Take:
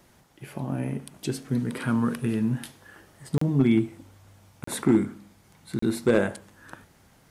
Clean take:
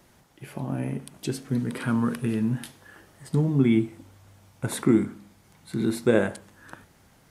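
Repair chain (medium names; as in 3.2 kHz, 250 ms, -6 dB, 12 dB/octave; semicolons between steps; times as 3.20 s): clip repair -12 dBFS; interpolate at 3.38/4.64/5.79 s, 34 ms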